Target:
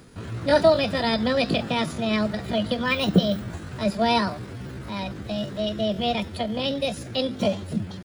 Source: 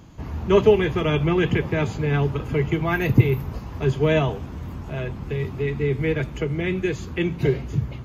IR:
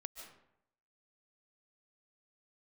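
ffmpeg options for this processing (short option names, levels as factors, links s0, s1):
-af "tiltshelf=f=1200:g=-3,asetrate=66075,aresample=44100,atempo=0.66742"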